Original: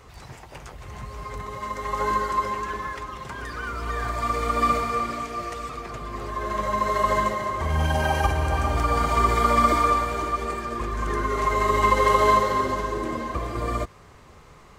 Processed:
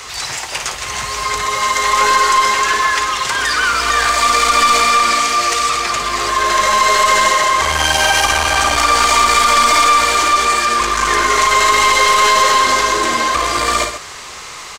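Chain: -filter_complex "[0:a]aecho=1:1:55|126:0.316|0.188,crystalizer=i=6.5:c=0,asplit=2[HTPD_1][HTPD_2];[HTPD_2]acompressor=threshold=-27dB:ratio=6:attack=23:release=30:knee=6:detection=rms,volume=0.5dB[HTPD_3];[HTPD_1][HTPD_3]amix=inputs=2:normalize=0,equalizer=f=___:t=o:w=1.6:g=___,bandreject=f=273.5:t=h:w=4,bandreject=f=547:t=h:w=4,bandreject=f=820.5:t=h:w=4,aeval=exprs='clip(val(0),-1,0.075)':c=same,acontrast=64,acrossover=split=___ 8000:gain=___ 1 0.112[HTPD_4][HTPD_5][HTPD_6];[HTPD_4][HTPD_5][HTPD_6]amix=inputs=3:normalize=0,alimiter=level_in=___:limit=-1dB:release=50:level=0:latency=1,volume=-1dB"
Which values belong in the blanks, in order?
490, -4.5, 340, 0.2, 4.5dB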